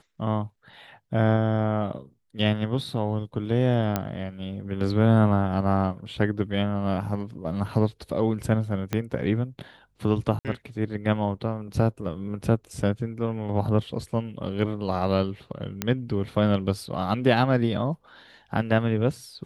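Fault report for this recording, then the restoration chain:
3.96 s: pop -10 dBFS
8.93 s: pop -12 dBFS
10.39–10.45 s: dropout 58 ms
15.82 s: pop -9 dBFS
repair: de-click; interpolate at 10.39 s, 58 ms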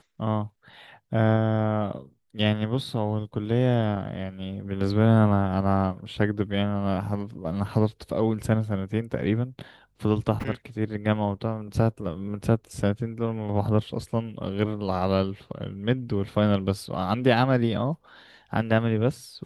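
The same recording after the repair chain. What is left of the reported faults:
8.93 s: pop

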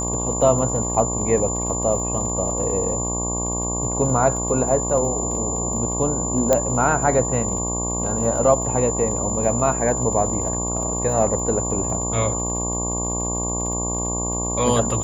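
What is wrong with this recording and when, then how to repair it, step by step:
buzz 60 Hz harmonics 19 -27 dBFS
crackle 39 per s -31 dBFS
whine 7.1 kHz -25 dBFS
6.53 s: pop -4 dBFS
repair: de-click; de-hum 60 Hz, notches 19; band-stop 7.1 kHz, Q 30

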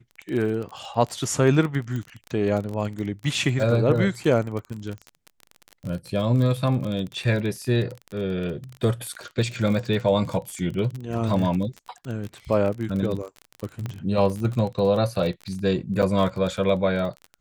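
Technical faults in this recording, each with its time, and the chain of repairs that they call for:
crackle 30 per s -28 dBFS
1.96 s: pop
13.86 s: pop -18 dBFS
16.02–16.03 s: dropout 8 ms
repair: de-click; interpolate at 16.02 s, 8 ms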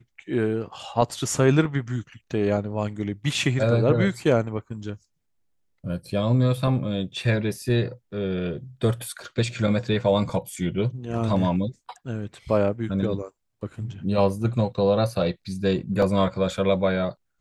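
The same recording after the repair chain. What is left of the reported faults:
1.96 s: pop

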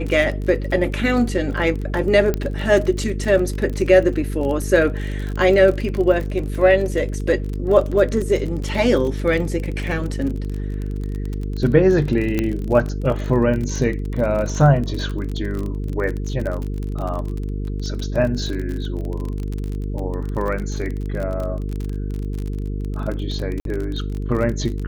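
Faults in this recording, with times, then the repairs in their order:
buzz 50 Hz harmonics 9 -25 dBFS
crackle 34 per s -25 dBFS
2.34 s: pop -9 dBFS
12.39 s: pop -8 dBFS
23.60–23.65 s: dropout 52 ms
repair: de-click; de-hum 50 Hz, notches 9; interpolate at 23.60 s, 52 ms

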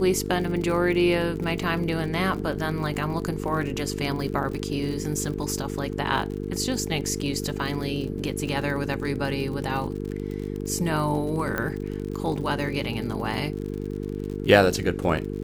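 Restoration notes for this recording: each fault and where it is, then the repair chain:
buzz 50 Hz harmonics 9 -31 dBFS
crackle 58 per s -32 dBFS
11.58 s: pop -13 dBFS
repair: de-click; de-hum 50 Hz, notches 9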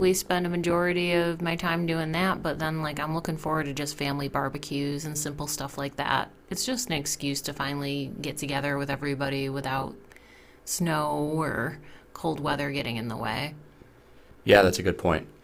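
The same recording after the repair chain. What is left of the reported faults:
nothing left

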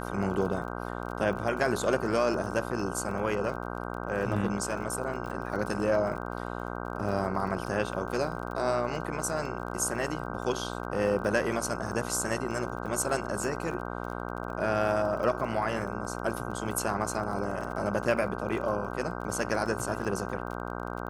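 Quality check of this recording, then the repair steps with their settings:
buzz 60 Hz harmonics 26 -36 dBFS
crackle 27 per s -37 dBFS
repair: de-click; de-hum 60 Hz, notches 26

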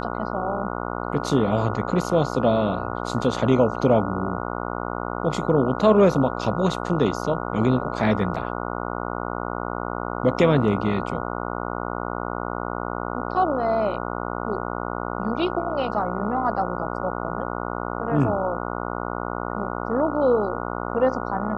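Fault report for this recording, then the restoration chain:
buzz 60 Hz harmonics 24 -29 dBFS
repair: de-hum 60 Hz, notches 24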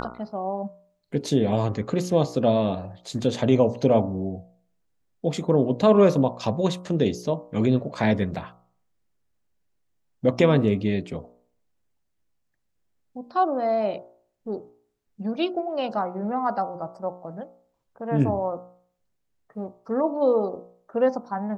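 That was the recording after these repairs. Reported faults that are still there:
nothing left

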